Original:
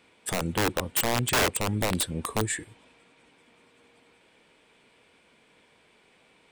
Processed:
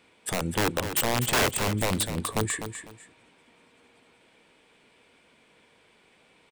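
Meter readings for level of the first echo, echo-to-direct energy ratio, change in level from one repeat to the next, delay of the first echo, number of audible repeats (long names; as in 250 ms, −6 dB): −9.5 dB, −9.0 dB, −12.0 dB, 250 ms, 2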